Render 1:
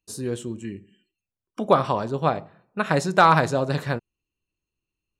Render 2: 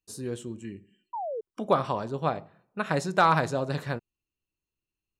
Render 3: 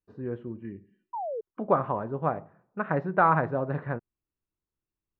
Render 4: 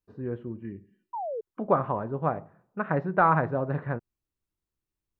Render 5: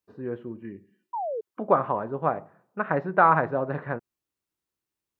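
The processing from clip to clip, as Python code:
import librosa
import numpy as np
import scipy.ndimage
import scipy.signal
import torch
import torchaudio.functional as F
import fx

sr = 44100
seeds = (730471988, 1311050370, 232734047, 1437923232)

y1 = fx.spec_paint(x, sr, seeds[0], shape='fall', start_s=1.13, length_s=0.28, low_hz=420.0, high_hz=1000.0, level_db=-27.0)
y1 = F.gain(torch.from_numpy(y1), -5.5).numpy()
y2 = scipy.signal.sosfilt(scipy.signal.butter(4, 1800.0, 'lowpass', fs=sr, output='sos'), y1)
y3 = fx.low_shelf(y2, sr, hz=120.0, db=4.0)
y4 = fx.highpass(y3, sr, hz=300.0, slope=6)
y4 = F.gain(torch.from_numpy(y4), 3.5).numpy()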